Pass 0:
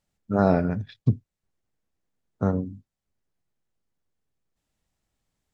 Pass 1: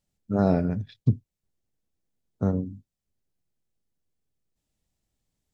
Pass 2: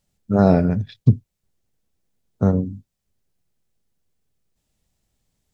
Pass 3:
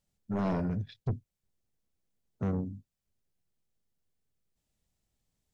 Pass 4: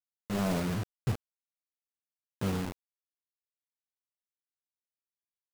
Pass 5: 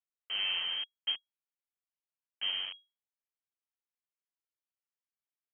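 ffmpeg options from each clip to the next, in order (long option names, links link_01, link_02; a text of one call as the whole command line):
ffmpeg -i in.wav -af "equalizer=frequency=1300:width_type=o:width=2.1:gain=-7.5" out.wav
ffmpeg -i in.wav -af "equalizer=frequency=300:width=4.5:gain=-3.5,volume=7.5dB" out.wav
ffmpeg -i in.wav -af "asoftclip=type=tanh:threshold=-17.5dB,volume=-8.5dB" out.wav
ffmpeg -i in.wav -af "acrusher=bits=5:mix=0:aa=0.000001" out.wav
ffmpeg -i in.wav -af "lowpass=frequency=2800:width_type=q:width=0.5098,lowpass=frequency=2800:width_type=q:width=0.6013,lowpass=frequency=2800:width_type=q:width=0.9,lowpass=frequency=2800:width_type=q:width=2.563,afreqshift=-3300,volume=-3.5dB" out.wav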